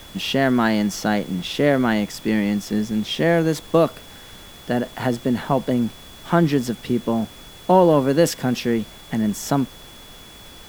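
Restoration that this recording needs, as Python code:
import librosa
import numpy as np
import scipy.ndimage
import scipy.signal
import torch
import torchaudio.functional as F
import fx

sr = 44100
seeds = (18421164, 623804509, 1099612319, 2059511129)

y = fx.notch(x, sr, hz=3400.0, q=30.0)
y = fx.noise_reduce(y, sr, print_start_s=9.9, print_end_s=10.4, reduce_db=23.0)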